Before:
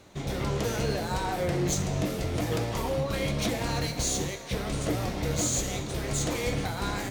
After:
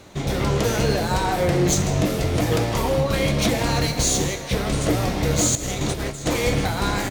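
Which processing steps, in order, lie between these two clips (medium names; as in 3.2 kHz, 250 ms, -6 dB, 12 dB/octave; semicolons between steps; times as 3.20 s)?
5.55–6.26 s: compressor with a negative ratio -34 dBFS, ratio -0.5; delay 158 ms -15.5 dB; trim +8 dB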